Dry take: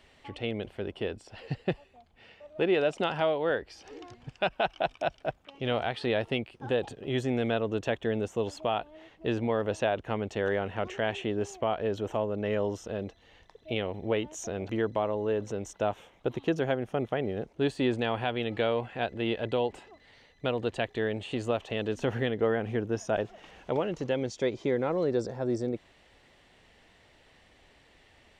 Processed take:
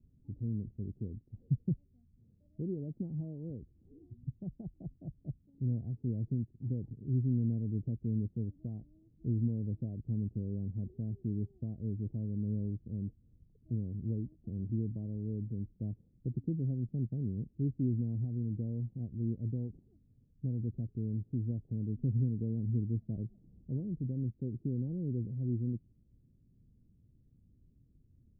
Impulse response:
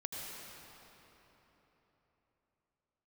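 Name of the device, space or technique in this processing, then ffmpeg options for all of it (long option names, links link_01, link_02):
the neighbour's flat through the wall: -af "lowpass=frequency=240:width=0.5412,lowpass=frequency=240:width=1.3066,equalizer=frequency=120:width_type=o:width=0.81:gain=5.5"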